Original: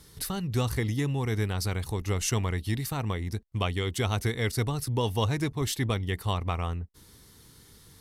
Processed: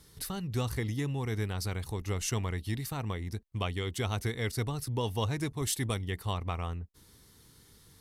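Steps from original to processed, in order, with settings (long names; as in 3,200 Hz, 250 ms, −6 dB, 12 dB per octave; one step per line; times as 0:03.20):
0:05.38–0:06.01: parametric band 9,500 Hz +4 dB → +14 dB 0.95 octaves
level −4.5 dB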